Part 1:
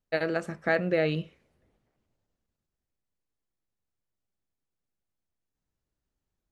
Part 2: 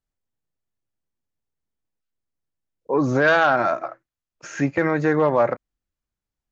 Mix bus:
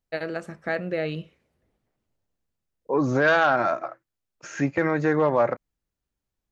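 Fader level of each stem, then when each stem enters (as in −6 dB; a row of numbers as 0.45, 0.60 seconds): −2.0, −2.5 decibels; 0.00, 0.00 seconds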